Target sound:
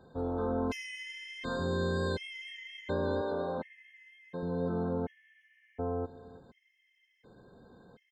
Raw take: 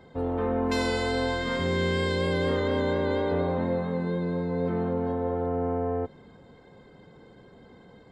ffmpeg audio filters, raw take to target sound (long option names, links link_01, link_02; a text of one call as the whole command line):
ffmpeg -i in.wav -filter_complex "[0:a]asettb=1/sr,asplit=3[link_01][link_02][link_03];[link_01]atrim=end=3.214[link_04];[link_02]atrim=start=3.21:end=4.43,asetpts=PTS-STARTPTS,afade=type=in:duration=0.004:curve=qsin,afade=type=out:start_time=1.216:duration=0.004:curve=qsin,highpass=frequency=330:poles=1[link_05];[link_03]atrim=start=4.426[link_06];[link_04][link_05]acrossfade=duration=0.004:curve1=hsin:curve2=qsin[link_07];[link_07][link_06]acrossfade=duration=0.004:curve1=qsin:curve2=hsin,asplit=2[link_08][link_09];[link_09]adelay=332.4,volume=-19dB,highshelf=frequency=4000:gain=-7.48[link_10];[link_08][link_10]amix=inputs=2:normalize=0,afftfilt=real='re*gt(sin(2*PI*0.69*pts/sr)*(1-2*mod(floor(b*sr/1024/1700),2)),0)':imag='im*gt(sin(2*PI*0.69*pts/sr)*(1-2*mod(floor(b*sr/1024/1700),2)),0)':win_size=1024:overlap=0.75,volume=-5dB" out.wav